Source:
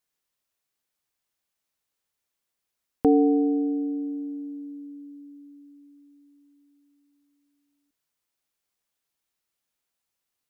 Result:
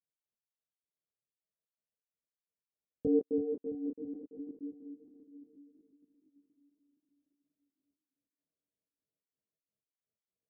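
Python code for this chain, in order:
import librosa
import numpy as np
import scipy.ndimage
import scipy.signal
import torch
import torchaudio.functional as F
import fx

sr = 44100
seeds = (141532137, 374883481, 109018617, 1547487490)

y = scipy.signal.sosfilt(scipy.signal.butter(2, 53.0, 'highpass', fs=sr, output='sos'), x)
y = fx.rider(y, sr, range_db=3, speed_s=0.5)
y = scipy.signal.sosfilt(scipy.signal.cheby1(6, 6, 660.0, 'lowpass', fs=sr, output='sos'), y)
y = fx.step_gate(y, sr, bpm=127, pattern='x.x..x.xxxx.xx.x', floor_db=-60.0, edge_ms=4.5)
y = fx.echo_feedback(y, sr, ms=334, feedback_pct=52, wet_db=-8)
y = fx.detune_double(y, sr, cents=23)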